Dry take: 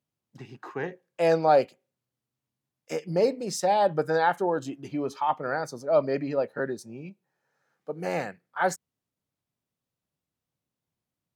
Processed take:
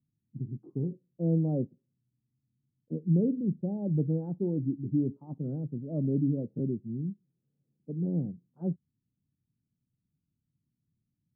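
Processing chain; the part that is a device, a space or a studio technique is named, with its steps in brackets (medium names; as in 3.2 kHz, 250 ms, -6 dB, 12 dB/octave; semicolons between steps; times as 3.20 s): the neighbour's flat through the wall (low-pass 270 Hz 24 dB/octave; peaking EQ 130 Hz +3 dB); trim +7.5 dB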